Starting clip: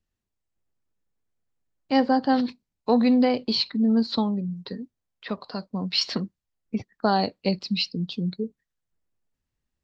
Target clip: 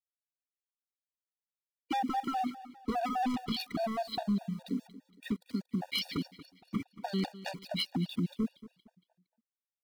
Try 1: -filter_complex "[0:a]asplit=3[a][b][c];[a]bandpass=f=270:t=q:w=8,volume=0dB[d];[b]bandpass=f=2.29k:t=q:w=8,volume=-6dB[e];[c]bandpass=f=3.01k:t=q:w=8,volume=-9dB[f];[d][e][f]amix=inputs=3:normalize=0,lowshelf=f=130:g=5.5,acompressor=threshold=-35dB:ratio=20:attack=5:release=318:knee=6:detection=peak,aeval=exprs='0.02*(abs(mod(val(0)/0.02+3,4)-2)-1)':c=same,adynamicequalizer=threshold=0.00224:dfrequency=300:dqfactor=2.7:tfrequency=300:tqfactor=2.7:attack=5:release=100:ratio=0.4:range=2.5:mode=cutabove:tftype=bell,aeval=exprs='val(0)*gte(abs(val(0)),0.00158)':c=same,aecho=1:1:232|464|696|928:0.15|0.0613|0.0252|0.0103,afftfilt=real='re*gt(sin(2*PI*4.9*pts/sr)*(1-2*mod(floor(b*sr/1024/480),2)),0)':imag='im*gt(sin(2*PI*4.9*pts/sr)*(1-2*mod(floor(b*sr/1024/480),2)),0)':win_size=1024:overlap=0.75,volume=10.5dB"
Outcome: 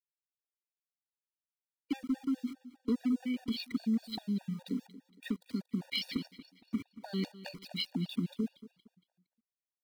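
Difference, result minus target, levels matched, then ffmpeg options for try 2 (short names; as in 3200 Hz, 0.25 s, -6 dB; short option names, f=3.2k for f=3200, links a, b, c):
compressor: peak gain reduction +8.5 dB
-filter_complex "[0:a]asplit=3[a][b][c];[a]bandpass=f=270:t=q:w=8,volume=0dB[d];[b]bandpass=f=2.29k:t=q:w=8,volume=-6dB[e];[c]bandpass=f=3.01k:t=q:w=8,volume=-9dB[f];[d][e][f]amix=inputs=3:normalize=0,lowshelf=f=130:g=5.5,acompressor=threshold=-26dB:ratio=20:attack=5:release=318:knee=6:detection=peak,aeval=exprs='0.02*(abs(mod(val(0)/0.02+3,4)-2)-1)':c=same,adynamicequalizer=threshold=0.00224:dfrequency=300:dqfactor=2.7:tfrequency=300:tqfactor=2.7:attack=5:release=100:ratio=0.4:range=2.5:mode=cutabove:tftype=bell,aeval=exprs='val(0)*gte(abs(val(0)),0.00158)':c=same,aecho=1:1:232|464|696|928:0.15|0.0613|0.0252|0.0103,afftfilt=real='re*gt(sin(2*PI*4.9*pts/sr)*(1-2*mod(floor(b*sr/1024/480),2)),0)':imag='im*gt(sin(2*PI*4.9*pts/sr)*(1-2*mod(floor(b*sr/1024/480),2)),0)':win_size=1024:overlap=0.75,volume=10.5dB"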